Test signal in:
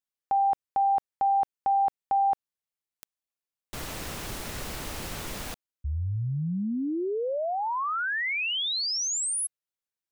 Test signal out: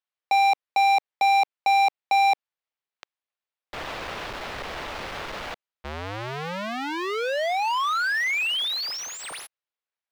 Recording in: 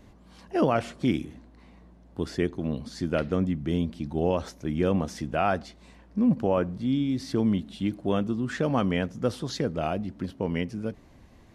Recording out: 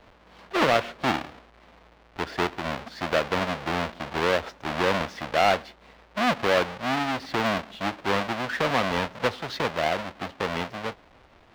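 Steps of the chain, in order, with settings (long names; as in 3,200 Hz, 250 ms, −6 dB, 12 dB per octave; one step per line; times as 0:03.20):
each half-wave held at its own peak
three-way crossover with the lows and the highs turned down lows −14 dB, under 450 Hz, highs −20 dB, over 4,500 Hz
level +2.5 dB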